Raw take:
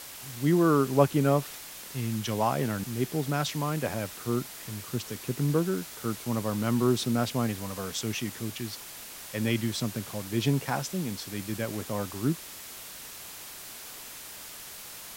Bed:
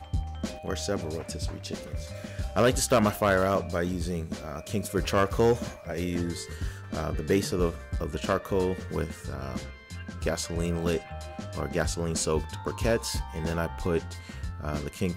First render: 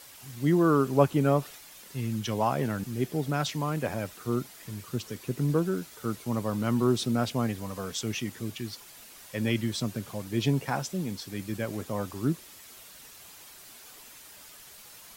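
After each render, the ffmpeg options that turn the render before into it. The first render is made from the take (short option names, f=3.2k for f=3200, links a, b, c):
-af "afftdn=nr=8:nf=-44"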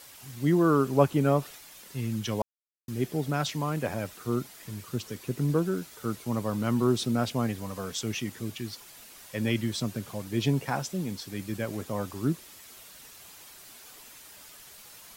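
-filter_complex "[0:a]asplit=3[a][b][c];[a]atrim=end=2.42,asetpts=PTS-STARTPTS,afade=t=out:st=2.416:d=0.004:c=hsin[d];[b]atrim=start=2.42:end=2.88,asetpts=PTS-STARTPTS,volume=0[e];[c]atrim=start=2.88,asetpts=PTS-STARTPTS,afade=t=in:d=0.004:c=hsin[f];[d][e][f]concat=n=3:v=0:a=1"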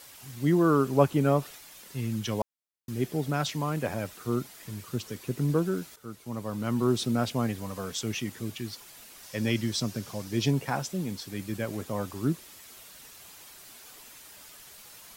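-filter_complex "[0:a]asettb=1/sr,asplit=3[a][b][c];[a]atrim=end=9.234[d];[b]atrim=start=9.23:end=10.51,asetpts=PTS-STARTPTS,afade=t=in:d=0.004:c=qsin,afade=t=out:st=1.276:d=0.004:c=qsin,equalizer=f=5.4k:t=o:w=0.56:g=7[e];[c]atrim=start=10.506[f];[d][e]acrossfade=d=0.004:c1=hsin:c2=qsin[g];[g][f]acrossfade=d=0.004:c1=qsin:c2=hsin,asplit=2[h][i];[h]atrim=end=5.96,asetpts=PTS-STARTPTS,afade=t=out:st=5.956:d=0.004:c=hsin:silence=0.223872[j];[i]atrim=start=5.96,asetpts=PTS-STARTPTS,afade=t=in:d=1.03:silence=0.223872[k];[j][k]concat=n=2:v=0:a=1"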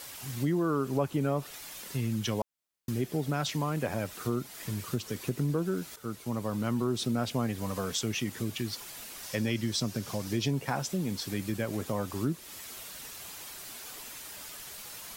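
-filter_complex "[0:a]asplit=2[a][b];[b]alimiter=limit=-18dB:level=0:latency=1:release=37,volume=-1.5dB[c];[a][c]amix=inputs=2:normalize=0,acompressor=threshold=-30dB:ratio=2.5"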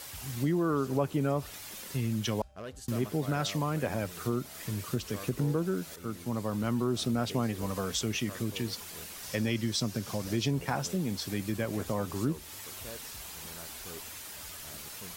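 -filter_complex "[1:a]volume=-20.5dB[a];[0:a][a]amix=inputs=2:normalize=0"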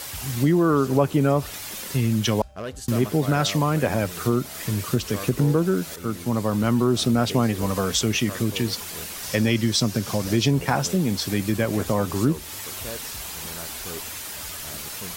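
-af "volume=9.5dB"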